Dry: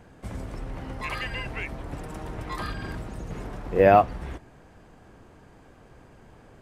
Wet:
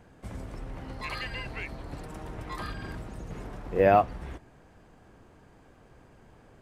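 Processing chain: 0.88–2.06 bell 4300 Hz +10.5 dB 0.23 oct; gain -4 dB

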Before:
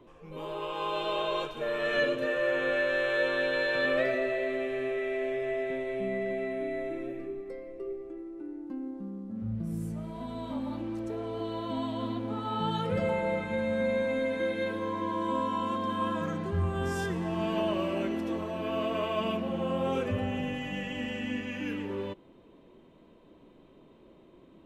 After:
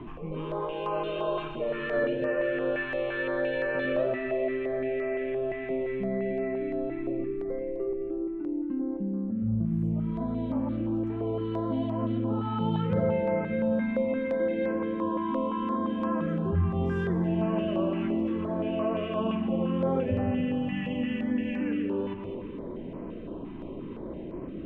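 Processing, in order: echo with dull and thin repeats by turns 0.108 s, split 1300 Hz, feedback 57%, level -9.5 dB; in parallel at 0 dB: compressor, threshold -39 dBFS, peak gain reduction 15.5 dB; on the sum: EQ curve 230 Hz 0 dB, 2900 Hz -7 dB, 4400 Hz -22 dB, 9200 Hz -30 dB; reverse; upward compressor, threshold -28 dBFS; reverse; notches 50/100/150 Hz; stepped notch 5.8 Hz 520–3600 Hz; gain +2.5 dB

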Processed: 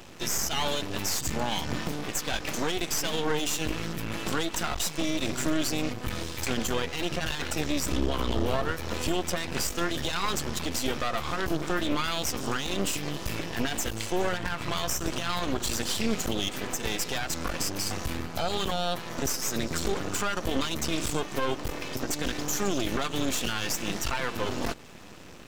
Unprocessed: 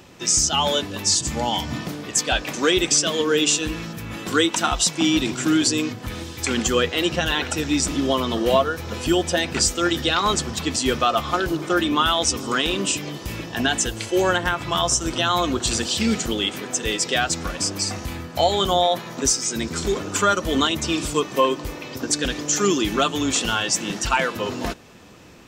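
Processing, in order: 7.9–8.72 octaver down 2 oct, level +4 dB; in parallel at +2.5 dB: compressor, threshold -28 dBFS, peak gain reduction 15 dB; on the sum: limiter -11 dBFS, peak gain reduction 7.5 dB; half-wave rectifier; gain -4 dB

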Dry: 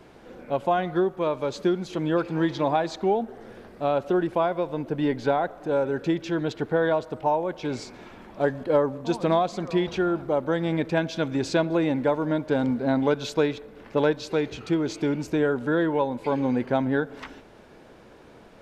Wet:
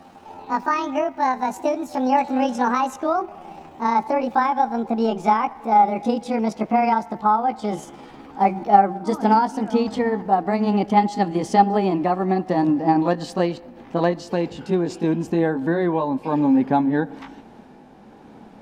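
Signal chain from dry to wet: gliding pitch shift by +10 st ending unshifted; small resonant body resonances 220/800 Hz, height 13 dB, ringing for 25 ms; gain -1 dB

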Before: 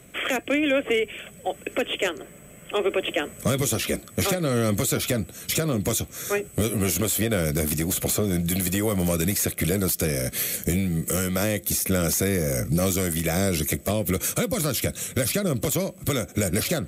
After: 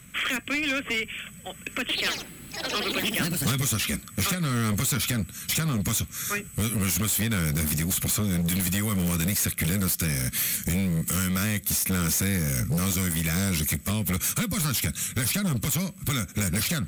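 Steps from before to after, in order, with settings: band shelf 510 Hz -14.5 dB; hard clip -24 dBFS, distortion -12 dB; 1.8–3.85 echoes that change speed 89 ms, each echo +4 st, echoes 3; gain +2 dB

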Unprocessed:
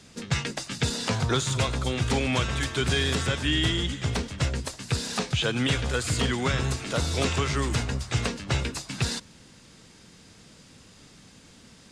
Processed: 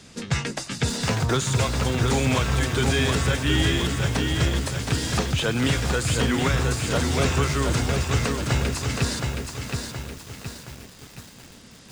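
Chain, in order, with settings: dynamic EQ 3500 Hz, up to -4 dB, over -39 dBFS, Q 1.2; in parallel at -5 dB: soft clip -24.5 dBFS, distortion -12 dB; on the sum: lo-fi delay 0.72 s, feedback 55%, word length 7-bit, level -4 dB

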